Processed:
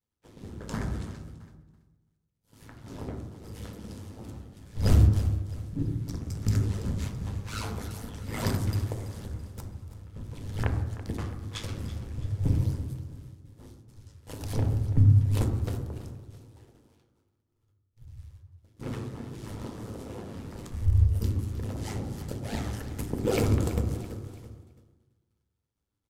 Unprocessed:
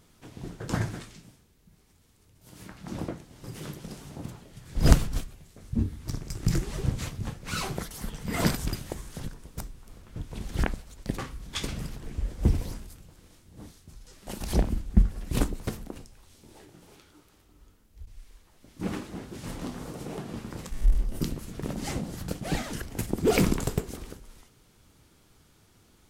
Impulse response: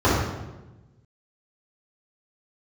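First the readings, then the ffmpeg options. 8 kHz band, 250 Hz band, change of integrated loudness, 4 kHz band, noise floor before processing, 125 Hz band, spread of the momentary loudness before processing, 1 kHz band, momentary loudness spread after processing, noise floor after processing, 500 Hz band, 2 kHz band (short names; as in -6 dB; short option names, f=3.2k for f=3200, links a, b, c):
-6.0 dB, -2.5 dB, +1.5 dB, -5.0 dB, -61 dBFS, +5.0 dB, 19 LU, -3.5 dB, 19 LU, -77 dBFS, -2.5 dB, -5.5 dB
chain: -filter_complex "[0:a]aeval=exprs='val(0)*sin(2*PI*53*n/s)':c=same,asplit=2[a][b];[b]aecho=0:1:332|664|996|1328:0.188|0.0848|0.0381|0.0172[c];[a][c]amix=inputs=2:normalize=0,agate=range=-33dB:threshold=-47dB:ratio=3:detection=peak,bandreject=f=60:t=h:w=6,bandreject=f=120:t=h:w=6,bandreject=f=180:t=h:w=6,bandreject=f=240:t=h:w=6,bandreject=f=300:t=h:w=6,bandreject=f=360:t=h:w=6,bandreject=f=420:t=h:w=6,asplit=2[d][e];[1:a]atrim=start_sample=2205[f];[e][f]afir=irnorm=-1:irlink=0,volume=-25.5dB[g];[d][g]amix=inputs=2:normalize=0,volume=-3dB"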